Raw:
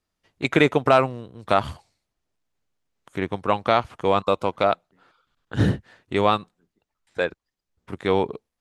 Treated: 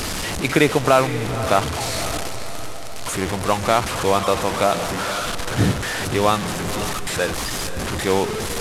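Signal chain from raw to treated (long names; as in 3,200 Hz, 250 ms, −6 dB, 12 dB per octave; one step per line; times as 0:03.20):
linear delta modulator 64 kbit/s, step −21 dBFS
feedback delay with all-pass diffusion 521 ms, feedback 53%, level −11 dB
level +1.5 dB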